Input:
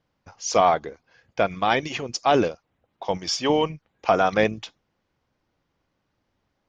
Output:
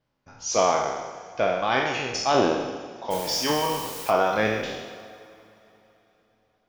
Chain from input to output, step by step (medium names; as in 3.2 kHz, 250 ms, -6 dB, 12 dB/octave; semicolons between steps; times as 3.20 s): spectral sustain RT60 1.20 s; 3.10–4.09 s: added noise white -33 dBFS; two-slope reverb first 0.37 s, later 3.6 s, from -18 dB, DRR 6 dB; trim -5.5 dB